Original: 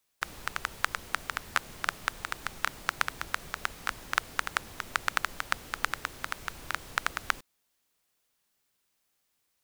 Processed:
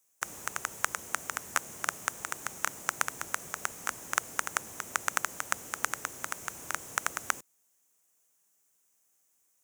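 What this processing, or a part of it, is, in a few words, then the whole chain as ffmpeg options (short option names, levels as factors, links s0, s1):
budget condenser microphone: -af "highpass=100,equalizer=f=520:w=0.57:g=3,highshelf=f=5400:t=q:w=3:g=7,volume=0.75"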